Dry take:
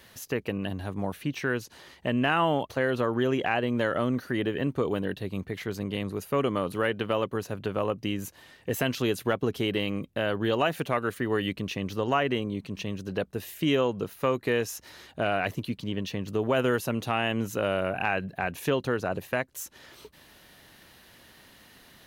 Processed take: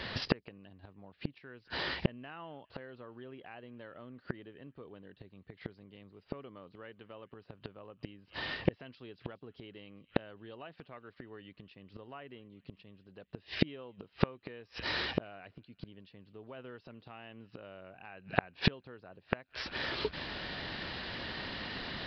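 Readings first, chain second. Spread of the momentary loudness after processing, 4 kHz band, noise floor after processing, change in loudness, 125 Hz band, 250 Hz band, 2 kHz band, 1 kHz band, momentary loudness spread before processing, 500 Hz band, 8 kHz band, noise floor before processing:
19 LU, -5.0 dB, -70 dBFS, -10.5 dB, -9.5 dB, -12.0 dB, -9.0 dB, -13.5 dB, 8 LU, -15.0 dB, under -20 dB, -55 dBFS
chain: downsampling 11025 Hz; thin delay 0.206 s, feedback 69%, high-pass 2100 Hz, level -21 dB; flipped gate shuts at -27 dBFS, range -37 dB; gain +14 dB

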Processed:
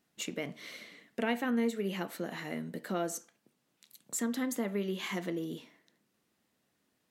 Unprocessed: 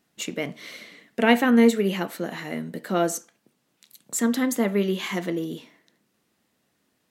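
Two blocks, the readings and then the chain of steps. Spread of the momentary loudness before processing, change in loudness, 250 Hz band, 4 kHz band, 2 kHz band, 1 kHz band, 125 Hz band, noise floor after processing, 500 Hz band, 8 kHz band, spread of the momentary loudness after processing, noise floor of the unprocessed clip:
17 LU, -11.5 dB, -11.5 dB, -9.5 dB, -11.0 dB, -11.5 dB, -9.5 dB, -78 dBFS, -11.5 dB, -8.5 dB, 12 LU, -72 dBFS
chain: compressor 2:1, threshold -27 dBFS, peak gain reduction 9 dB; gain -6 dB

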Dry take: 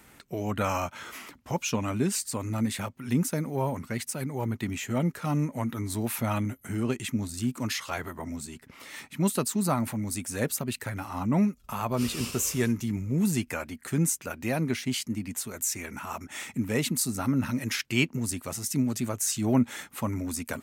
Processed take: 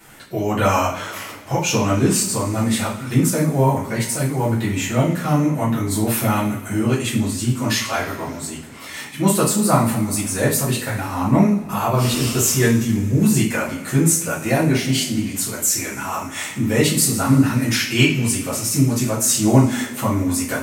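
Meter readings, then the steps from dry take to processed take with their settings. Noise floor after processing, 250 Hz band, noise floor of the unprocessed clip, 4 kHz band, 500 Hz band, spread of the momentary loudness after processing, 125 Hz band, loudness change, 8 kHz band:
-33 dBFS, +9.5 dB, -55 dBFS, +11.0 dB, +11.0 dB, 9 LU, +11.5 dB, +10.5 dB, +11.0 dB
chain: two-slope reverb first 0.42 s, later 2.5 s, from -20 dB, DRR -9.5 dB; gain +1 dB

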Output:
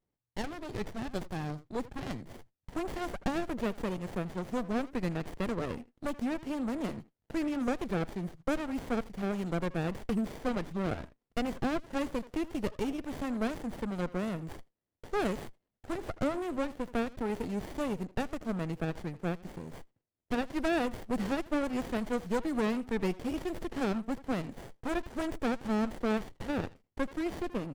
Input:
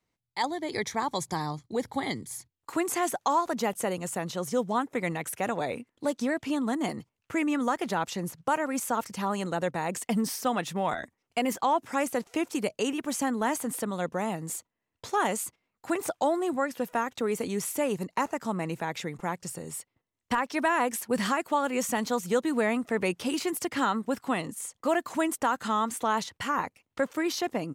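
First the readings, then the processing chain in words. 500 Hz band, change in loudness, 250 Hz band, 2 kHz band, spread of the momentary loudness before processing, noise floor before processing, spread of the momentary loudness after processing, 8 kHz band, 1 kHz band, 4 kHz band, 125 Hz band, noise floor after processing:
-5.0 dB, -5.0 dB, -2.0 dB, -7.5 dB, 7 LU, -83 dBFS, 8 LU, -17.0 dB, -10.5 dB, -8.0 dB, +1.0 dB, under -85 dBFS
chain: speakerphone echo 80 ms, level -16 dB; running maximum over 33 samples; gain -3.5 dB

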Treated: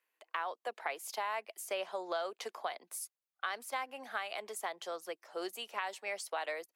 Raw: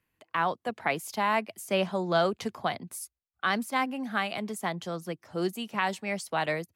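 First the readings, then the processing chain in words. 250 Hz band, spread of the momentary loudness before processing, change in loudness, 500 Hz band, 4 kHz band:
-20.0 dB, 9 LU, -9.5 dB, -9.0 dB, -7.5 dB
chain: HPF 440 Hz 24 dB/oct; compressor 4:1, threshold -32 dBFS, peak gain reduction 10 dB; gain -2.5 dB

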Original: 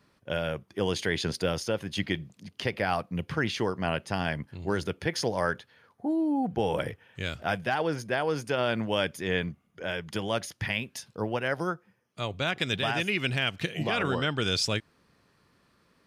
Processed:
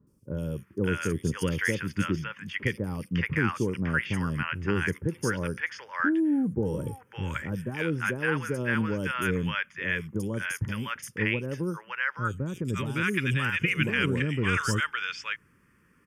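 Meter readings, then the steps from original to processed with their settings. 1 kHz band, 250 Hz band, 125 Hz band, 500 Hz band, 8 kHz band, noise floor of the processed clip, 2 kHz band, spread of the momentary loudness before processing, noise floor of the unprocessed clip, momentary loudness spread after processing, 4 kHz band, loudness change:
-2.0 dB, +3.0 dB, +4.5 dB, -3.0 dB, 0.0 dB, -63 dBFS, +3.5 dB, 8 LU, -68 dBFS, 8 LU, -6.0 dB, +1.0 dB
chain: fixed phaser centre 1700 Hz, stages 4; three bands offset in time lows, highs, mids 70/560 ms, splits 790/4600 Hz; gain +5 dB

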